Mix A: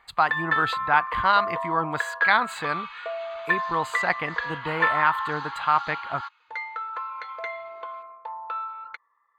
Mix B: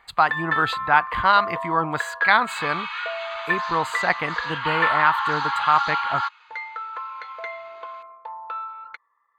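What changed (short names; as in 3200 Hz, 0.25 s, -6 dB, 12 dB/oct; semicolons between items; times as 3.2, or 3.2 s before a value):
speech +3.0 dB; second sound +10.5 dB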